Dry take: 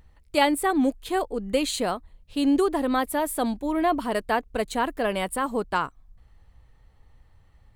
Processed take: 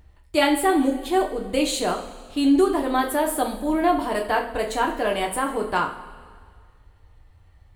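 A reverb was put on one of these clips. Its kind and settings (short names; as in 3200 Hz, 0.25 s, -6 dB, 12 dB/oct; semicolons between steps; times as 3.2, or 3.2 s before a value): two-slope reverb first 0.35 s, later 1.9 s, from -16 dB, DRR 0.5 dB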